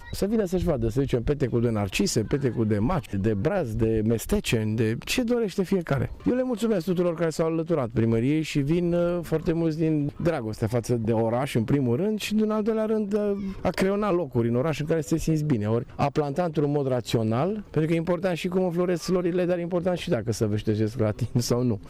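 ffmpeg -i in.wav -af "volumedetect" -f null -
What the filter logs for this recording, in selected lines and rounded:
mean_volume: -24.6 dB
max_volume: -13.0 dB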